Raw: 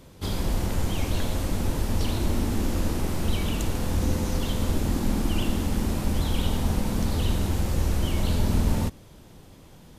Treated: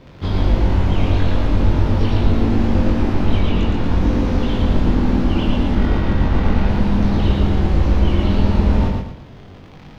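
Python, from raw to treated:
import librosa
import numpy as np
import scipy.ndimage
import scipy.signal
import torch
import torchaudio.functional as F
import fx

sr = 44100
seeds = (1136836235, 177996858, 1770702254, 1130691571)

y = fx.high_shelf(x, sr, hz=11000.0, db=-11.5, at=(3.39, 3.84))
y = fx.quant_dither(y, sr, seeds[0], bits=10, dither='triangular')
y = fx.dmg_crackle(y, sr, seeds[1], per_s=42.0, level_db=-31.0)
y = fx.sample_hold(y, sr, seeds[2], rate_hz=1700.0, jitter_pct=0, at=(5.75, 6.69))
y = fx.air_absorb(y, sr, metres=260.0)
y = fx.doubler(y, sr, ms=21.0, db=-3)
y = fx.echo_feedback(y, sr, ms=114, feedback_pct=36, wet_db=-3.0)
y = F.gain(torch.from_numpy(y), 6.0).numpy()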